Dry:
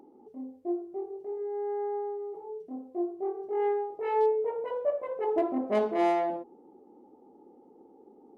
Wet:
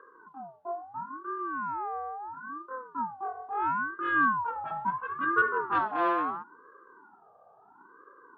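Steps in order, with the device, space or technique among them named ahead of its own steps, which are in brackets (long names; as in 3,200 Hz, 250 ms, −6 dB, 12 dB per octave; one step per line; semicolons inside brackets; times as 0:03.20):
voice changer toy (ring modulator whose carrier an LFO sweeps 560 Hz, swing 40%, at 0.74 Hz; loudspeaker in its box 400–3,600 Hz, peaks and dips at 630 Hz −3 dB, 1,500 Hz +8 dB, 2,300 Hz −7 dB)
level +3.5 dB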